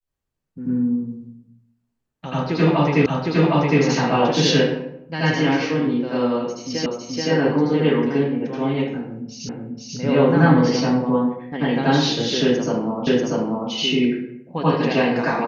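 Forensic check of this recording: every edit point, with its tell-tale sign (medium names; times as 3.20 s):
3.06 s: repeat of the last 0.76 s
6.86 s: repeat of the last 0.43 s
9.49 s: repeat of the last 0.49 s
13.07 s: repeat of the last 0.64 s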